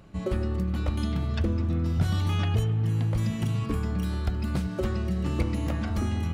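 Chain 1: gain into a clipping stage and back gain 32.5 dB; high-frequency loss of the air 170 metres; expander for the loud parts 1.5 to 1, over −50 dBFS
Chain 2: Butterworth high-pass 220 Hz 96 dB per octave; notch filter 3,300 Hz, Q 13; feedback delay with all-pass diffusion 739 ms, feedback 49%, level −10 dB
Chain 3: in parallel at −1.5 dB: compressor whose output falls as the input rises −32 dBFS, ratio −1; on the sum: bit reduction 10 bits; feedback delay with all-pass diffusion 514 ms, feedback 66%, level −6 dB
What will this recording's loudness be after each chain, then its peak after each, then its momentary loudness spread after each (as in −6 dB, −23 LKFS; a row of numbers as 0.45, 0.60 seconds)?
−36.0, −35.5, −23.5 LKFS; −32.5, −18.0, −10.0 dBFS; 2, 4, 3 LU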